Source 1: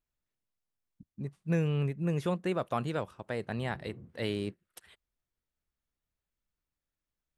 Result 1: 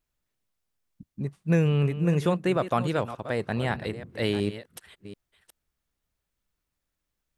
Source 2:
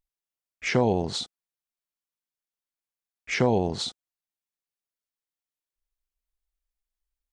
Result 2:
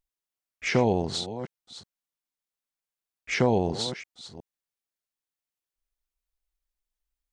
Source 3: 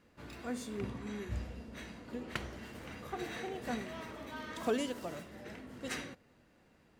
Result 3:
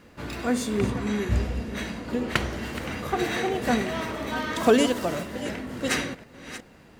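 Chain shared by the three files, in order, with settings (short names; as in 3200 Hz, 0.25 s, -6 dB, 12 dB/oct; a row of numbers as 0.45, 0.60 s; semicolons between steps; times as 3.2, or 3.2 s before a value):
reverse delay 0.367 s, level -13 dB; match loudness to -27 LUFS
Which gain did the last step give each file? +6.5, -0.5, +14.0 dB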